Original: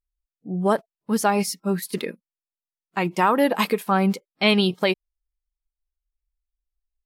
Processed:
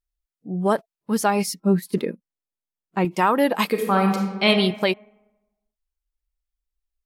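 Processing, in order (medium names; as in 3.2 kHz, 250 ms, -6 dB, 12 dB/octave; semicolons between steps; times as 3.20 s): 1.54–3.05 s: tilt shelf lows +6.5 dB, about 850 Hz; 3.70–4.47 s: reverb throw, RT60 1.1 s, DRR 1.5 dB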